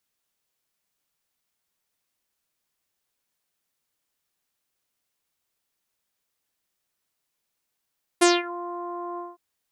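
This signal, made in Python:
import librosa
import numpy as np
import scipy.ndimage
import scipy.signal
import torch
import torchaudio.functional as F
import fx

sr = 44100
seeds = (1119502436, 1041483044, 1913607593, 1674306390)

y = fx.sub_voice(sr, note=65, wave='saw', cutoff_hz=1000.0, q=3.9, env_oct=3.5, env_s=0.3, attack_ms=14.0, decay_s=0.2, sustain_db=-20.5, release_s=0.19, note_s=0.97, slope=24)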